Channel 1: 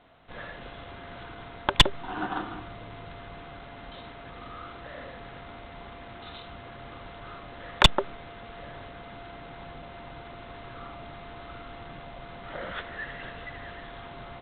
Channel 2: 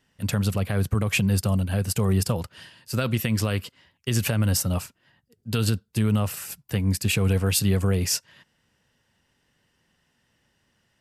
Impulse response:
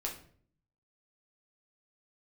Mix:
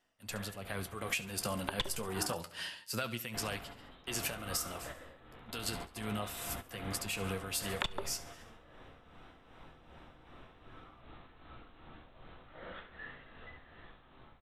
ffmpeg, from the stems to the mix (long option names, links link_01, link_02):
-filter_complex "[0:a]volume=-10.5dB,asplit=3[link_01][link_02][link_03];[link_01]atrim=end=2.34,asetpts=PTS-STARTPTS,afade=type=out:start_time=2.336:duration=0.004:curve=hsin[link_04];[link_02]atrim=start=2.34:end=3.34,asetpts=PTS-STARTPTS,volume=0[link_05];[link_03]atrim=start=3.34,asetpts=PTS-STARTPTS,afade=type=in:duration=0.004:curve=hsin[link_06];[link_04][link_05][link_06]concat=n=3:v=0:a=1,asplit=3[link_07][link_08][link_09];[link_08]volume=-12.5dB[link_10];[link_09]volume=-20.5dB[link_11];[1:a]highpass=frequency=700:poles=1,dynaudnorm=framelen=110:gausssize=17:maxgain=5dB,flanger=delay=7.8:depth=6.8:regen=48:speed=0.3:shape=triangular,volume=-4.5dB,afade=type=out:start_time=2.61:duration=0.57:silence=0.281838,asplit=3[link_12][link_13][link_14];[link_13]volume=-16.5dB[link_15];[link_14]apad=whole_len=635624[link_16];[link_07][link_16]sidechaingate=range=-33dB:threshold=-58dB:ratio=16:detection=peak[link_17];[2:a]atrim=start_sample=2205[link_18];[link_10][link_18]afir=irnorm=-1:irlink=0[link_19];[link_11][link_15]amix=inputs=2:normalize=0,aecho=0:1:69|138|207|276|345|414|483:1|0.47|0.221|0.104|0.0488|0.0229|0.0108[link_20];[link_17][link_12][link_19][link_20]amix=inputs=4:normalize=0,dynaudnorm=framelen=280:gausssize=9:maxgain=11dB,tremolo=f=2.6:d=0.56,acompressor=threshold=-32dB:ratio=12"